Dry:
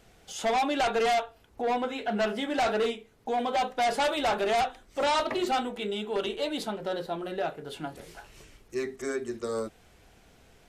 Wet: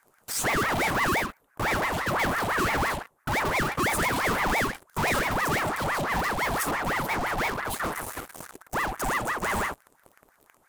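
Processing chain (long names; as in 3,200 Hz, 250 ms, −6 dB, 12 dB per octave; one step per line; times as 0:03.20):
flat-topped bell 2,800 Hz −11 dB 2.5 octaves
reverb whose tail is shaped and stops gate 80 ms rising, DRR 12 dB
in parallel at −9 dB: fuzz pedal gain 45 dB, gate −50 dBFS
on the sum: high-shelf EQ 9,200 Hz +11 dB
ring modulator whose carrier an LFO sweeps 980 Hz, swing 65%, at 5.9 Hz
level −3.5 dB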